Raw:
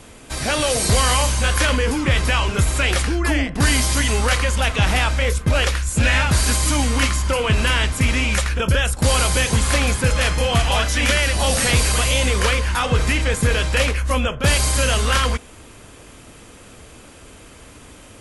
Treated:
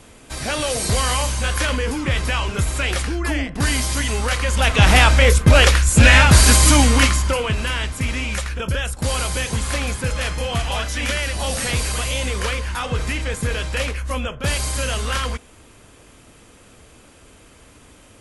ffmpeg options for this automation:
-af "volume=6.5dB,afade=t=in:st=4.39:d=0.6:silence=0.334965,afade=t=out:st=6.7:d=0.86:silence=0.266073"

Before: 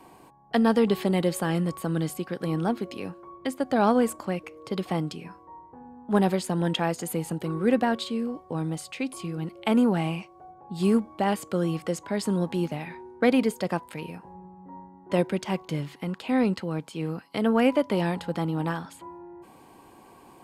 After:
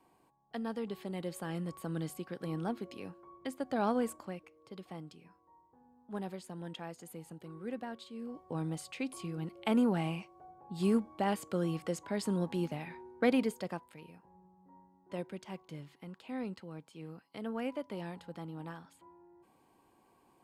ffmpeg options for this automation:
-af "volume=1dB,afade=t=in:st=1.01:d=0.95:silence=0.446684,afade=t=out:st=4.09:d=0.44:silence=0.398107,afade=t=in:st=8.12:d=0.41:silence=0.281838,afade=t=out:st=13.34:d=0.58:silence=0.354813"

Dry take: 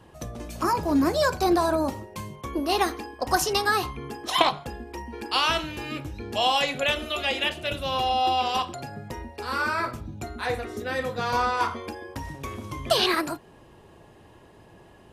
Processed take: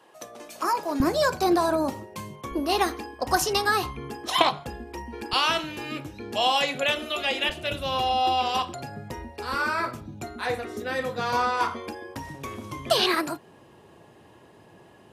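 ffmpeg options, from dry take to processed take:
-af "asetnsamples=n=441:p=0,asendcmd='1 highpass f 110;2.51 highpass f 46;5.33 highpass f 130;7.49 highpass f 52;9.54 highpass f 110',highpass=450"

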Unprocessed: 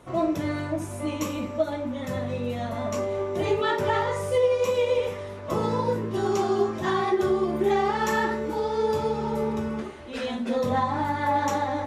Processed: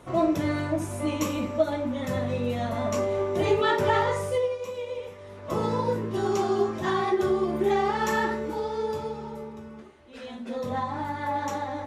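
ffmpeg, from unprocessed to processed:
-af "volume=19dB,afade=t=out:st=4.09:d=0.5:silence=0.251189,afade=t=in:st=5.18:d=0.41:silence=0.334965,afade=t=out:st=8.27:d=1.24:silence=0.251189,afade=t=in:st=10.02:d=0.78:silence=0.398107"

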